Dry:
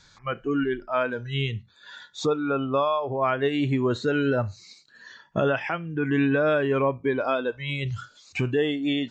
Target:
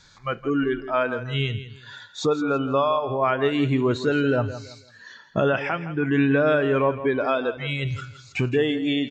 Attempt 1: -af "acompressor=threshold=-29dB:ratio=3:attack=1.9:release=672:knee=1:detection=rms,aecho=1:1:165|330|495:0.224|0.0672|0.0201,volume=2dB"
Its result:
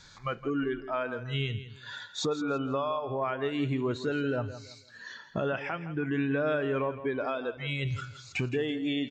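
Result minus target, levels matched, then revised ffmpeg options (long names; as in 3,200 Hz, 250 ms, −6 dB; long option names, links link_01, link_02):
downward compressor: peak gain reduction +10.5 dB
-af "aecho=1:1:165|330|495:0.224|0.0672|0.0201,volume=2dB"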